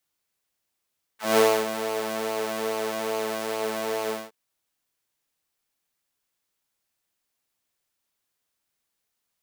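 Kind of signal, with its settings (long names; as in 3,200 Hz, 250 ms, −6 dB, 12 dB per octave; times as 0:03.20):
subtractive patch with pulse-width modulation A3, sub −3 dB, noise −12 dB, filter highpass, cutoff 470 Hz, Q 1.8, filter decay 0.06 s, filter sustain 0%, attack 184 ms, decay 0.28 s, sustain −11 dB, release 0.21 s, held 2.91 s, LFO 2.4 Hz, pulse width 31%, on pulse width 19%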